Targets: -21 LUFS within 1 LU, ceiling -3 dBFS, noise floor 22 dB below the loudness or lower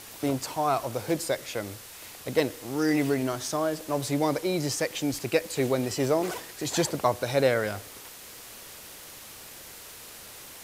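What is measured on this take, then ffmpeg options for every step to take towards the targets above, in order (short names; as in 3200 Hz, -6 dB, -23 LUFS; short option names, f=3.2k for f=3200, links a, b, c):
noise floor -45 dBFS; noise floor target -50 dBFS; loudness -28.0 LUFS; peak -9.0 dBFS; loudness target -21.0 LUFS
-> -af "afftdn=nr=6:nf=-45"
-af "volume=7dB,alimiter=limit=-3dB:level=0:latency=1"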